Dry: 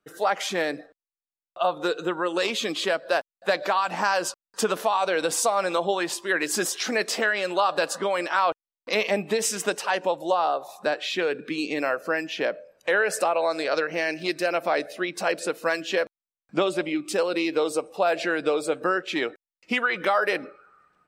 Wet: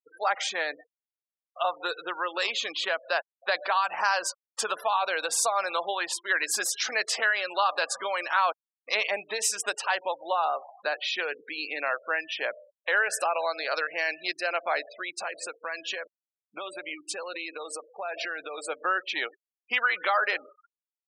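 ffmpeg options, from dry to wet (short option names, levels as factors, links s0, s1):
-filter_complex "[0:a]asettb=1/sr,asplit=3[s0][s1][s2];[s0]atrim=end=2.494[s3];[s1]atrim=start=2.49:end=3.09,asetpts=PTS-STARTPTS,afade=t=in:d=0.004:c=qsin,afade=t=out:st=0.596:d=0.004:c=qsin,highshelf=f=8400:g=-6.5[s4];[s2]atrim=start=3.086[s5];[s3][s4]acrossfade=d=0.004:c1=hsin:c2=qsin[s6];[s6][s5]acrossfade=d=0.004:c1=qsin:c2=hsin,asettb=1/sr,asplit=3[s7][s8][s9];[s7]atrim=end=14.974[s10];[s8]atrim=start=14.97:end=18.58,asetpts=PTS-STARTPTS,afade=t=in:d=0.004:c=qsin,afade=t=out:st=3.606:d=0.004:c=qsin,acompressor=threshold=0.0562:ratio=8:attack=3.2:release=140:knee=1:detection=peak[s11];[s9]atrim=start=18.576[s12];[s10][s11]acrossfade=d=0.004:c1=hsin:c2=qsin[s13];[s13][s12]acrossfade=d=0.004:c1=qsin:c2=hsin,afftfilt=real='re*gte(hypot(re,im),0.02)':imag='im*gte(hypot(re,im),0.02)':win_size=1024:overlap=0.75,highpass=800"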